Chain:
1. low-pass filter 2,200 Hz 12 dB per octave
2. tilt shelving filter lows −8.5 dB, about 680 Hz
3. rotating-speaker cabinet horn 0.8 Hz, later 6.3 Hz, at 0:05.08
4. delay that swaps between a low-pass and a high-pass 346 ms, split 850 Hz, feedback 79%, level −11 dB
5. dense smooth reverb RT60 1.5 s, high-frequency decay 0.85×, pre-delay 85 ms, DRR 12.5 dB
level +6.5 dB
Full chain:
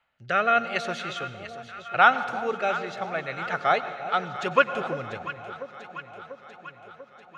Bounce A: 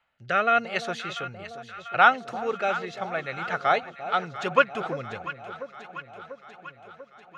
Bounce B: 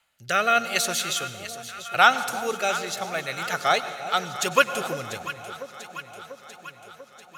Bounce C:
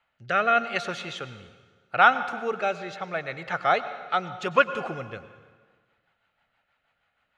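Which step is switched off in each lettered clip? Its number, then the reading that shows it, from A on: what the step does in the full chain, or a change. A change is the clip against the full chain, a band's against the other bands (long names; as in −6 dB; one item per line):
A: 5, echo-to-direct ratio −8.0 dB to −10.5 dB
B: 1, 4 kHz band +8.5 dB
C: 4, echo-to-direct ratio −8.0 dB to −12.5 dB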